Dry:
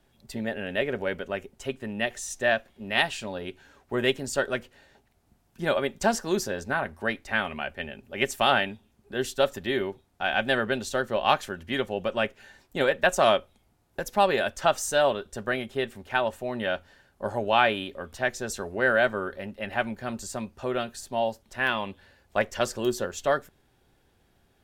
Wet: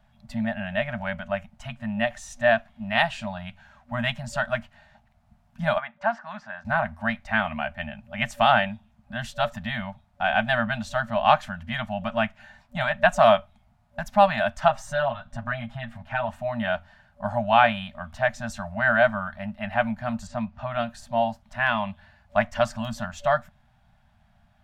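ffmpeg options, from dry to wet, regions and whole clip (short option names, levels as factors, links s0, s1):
-filter_complex "[0:a]asettb=1/sr,asplit=3[s0][s1][s2];[s0]atrim=end=5.784[s3];[s1]atrim=start=5.78:end=6.65,asetpts=PTS-STARTPTS,afade=t=in:d=0.004:c=qsin,afade=t=out:st=0.866:d=0.004:c=qsin,bandpass=f=1500:t=q:w=1,aemphasis=mode=reproduction:type=75fm[s4];[s2]atrim=start=6.646[s5];[s3][s4]acrossfade=d=0.004:c1=hsin:c2=qsin[s6];[s6][s5]acrossfade=d=0.004:c1=qsin:c2=hsin,asettb=1/sr,asplit=3[s7][s8][s9];[s7]atrim=end=14.684[s10];[s8]atrim=start=14.68:end=16.29,asetpts=PTS-STARTPTS,afade=t=in:d=0.004:c=qsin,afade=t=out:st=1.606:d=0.004:c=qsin,highshelf=f=3600:g=-9,aecho=1:1:7.4:0.91,atrim=end_sample=71001,acompressor=threshold=0.0224:ratio=1.5:attack=3.2:release=140:knee=1:detection=peak[s11];[s9]atrim=start=16.286[s12];[s10][s11]acrossfade=d=0.004:c1=hsin:c2=qsin[s13];[s13][s12]acrossfade=d=0.004:c1=qsin:c2=hsin,asettb=1/sr,asplit=3[s14][s15][s16];[s14]atrim=end=20.274[s17];[s15]atrim=start=20.27:end=20.71,asetpts=PTS-STARTPTS,afade=t=in:d=0.004:c=qsin,afade=t=out:st=0.436:d=0.004:c=qsin,lowpass=4300,acompressor=mode=upward:threshold=0.00708:ratio=2.5:attack=3.2:release=140:knee=2.83:detection=peak[s18];[s16]atrim=start=20.706[s19];[s17][s18]acrossfade=d=0.004:c1=hsin:c2=qsin[s20];[s20][s19]acrossfade=d=0.004:c1=qsin:c2=hsin,lowpass=f=1500:p=1,afftfilt=real='re*(1-between(b*sr/4096,240,580))':imag='im*(1-between(b*sr/4096,240,580))':win_size=4096:overlap=0.75,volume=2"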